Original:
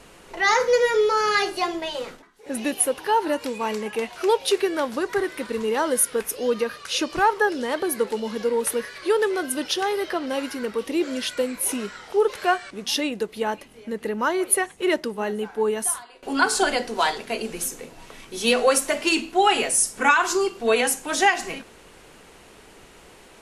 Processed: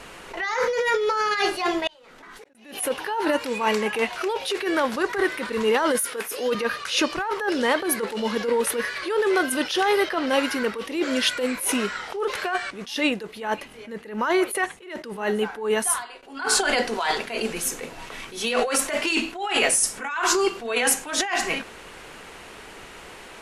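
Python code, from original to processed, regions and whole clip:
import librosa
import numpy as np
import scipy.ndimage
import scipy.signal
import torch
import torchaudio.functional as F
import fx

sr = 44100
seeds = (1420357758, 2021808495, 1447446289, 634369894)

y = fx.chain(x, sr, fx.gate_flip(shuts_db=-39.0, range_db=-37),
    fx.pre_swell(db_per_s=22.0), at=(1.87, 2.55))
y = fx.chain(y, sr, fx.high_shelf(hz=8900.0, db=9.0),
    fx.overload_stage(gain_db=10.5),
    fx.highpass(hz=230.0, slope=12), at=(5.99, 6.55))
y = fx.peak_eq(y, sr, hz=1700.0, db=6.5, octaves=2.7)
y = fx.over_compress(y, sr, threshold_db=-21.0, ratio=-1.0)
y = fx.attack_slew(y, sr, db_per_s=110.0)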